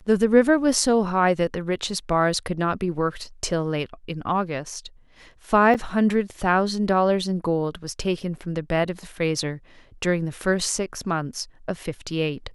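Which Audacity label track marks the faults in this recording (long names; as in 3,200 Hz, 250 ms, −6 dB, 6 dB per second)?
5.740000	5.750000	drop-out 7 ms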